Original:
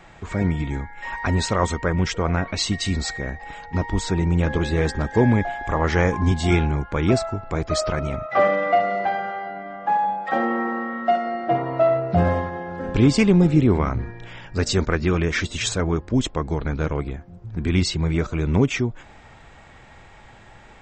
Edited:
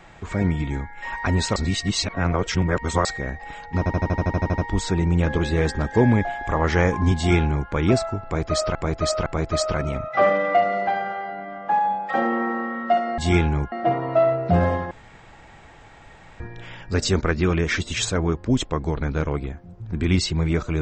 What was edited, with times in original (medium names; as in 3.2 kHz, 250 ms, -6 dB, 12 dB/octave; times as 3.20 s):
1.56–3.05 s: reverse
3.78 s: stutter 0.08 s, 11 plays
6.36–6.90 s: copy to 11.36 s
7.44–7.95 s: loop, 3 plays
12.55–14.04 s: room tone